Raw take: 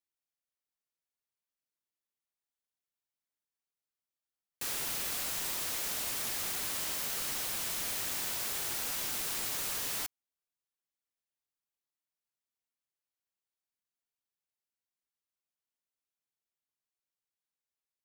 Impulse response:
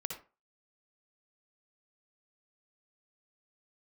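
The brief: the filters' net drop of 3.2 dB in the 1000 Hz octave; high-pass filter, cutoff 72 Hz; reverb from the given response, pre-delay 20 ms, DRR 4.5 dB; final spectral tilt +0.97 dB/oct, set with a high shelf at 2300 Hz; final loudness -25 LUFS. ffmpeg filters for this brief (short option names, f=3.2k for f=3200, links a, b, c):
-filter_complex "[0:a]highpass=72,equalizer=f=1k:t=o:g=-5.5,highshelf=f=2.3k:g=5.5,asplit=2[a][b];[1:a]atrim=start_sample=2205,adelay=20[c];[b][c]afir=irnorm=-1:irlink=0,volume=-4.5dB[d];[a][d]amix=inputs=2:normalize=0,volume=2dB"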